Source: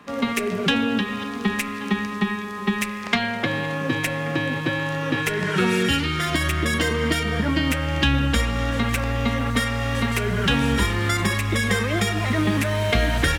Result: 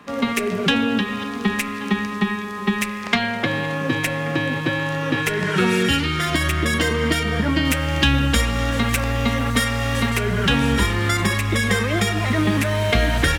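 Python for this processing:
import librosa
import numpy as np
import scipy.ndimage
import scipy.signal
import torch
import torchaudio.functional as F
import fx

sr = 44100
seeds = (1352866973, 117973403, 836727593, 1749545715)

y = fx.high_shelf(x, sr, hz=4700.0, db=5.5, at=(7.65, 10.1))
y = y * 10.0 ** (2.0 / 20.0)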